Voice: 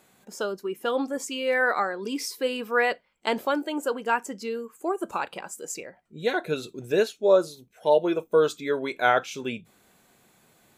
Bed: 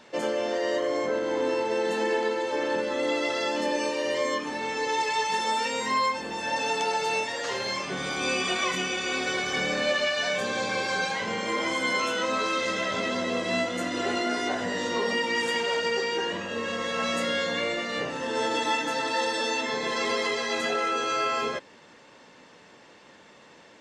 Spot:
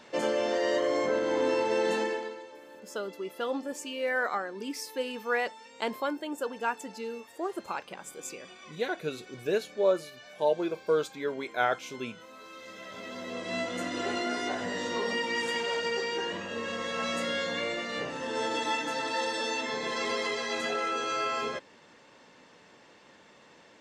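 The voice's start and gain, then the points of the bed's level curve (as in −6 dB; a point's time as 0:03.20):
2.55 s, −6.0 dB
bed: 0:01.95 −0.5 dB
0:02.62 −23 dB
0:12.33 −23 dB
0:13.73 −4 dB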